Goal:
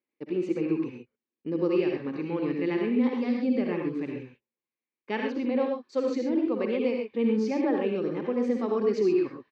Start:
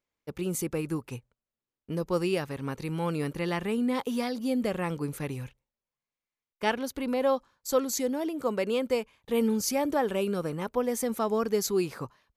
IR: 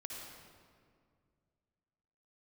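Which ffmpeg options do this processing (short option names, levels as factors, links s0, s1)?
-filter_complex "[0:a]atempo=1.3,highpass=220,equalizer=f=230:t=q:w=4:g=4,equalizer=f=330:t=q:w=4:g=8,equalizer=f=660:t=q:w=4:g=-8,equalizer=f=980:t=q:w=4:g=-5,equalizer=f=1400:t=q:w=4:g=-9,equalizer=f=3300:t=q:w=4:g=-8,lowpass=f=3700:w=0.5412,lowpass=f=3700:w=1.3066[s0];[1:a]atrim=start_sample=2205,afade=t=out:st=0.19:d=0.01,atrim=end_sample=8820[s1];[s0][s1]afir=irnorm=-1:irlink=0,volume=1.78"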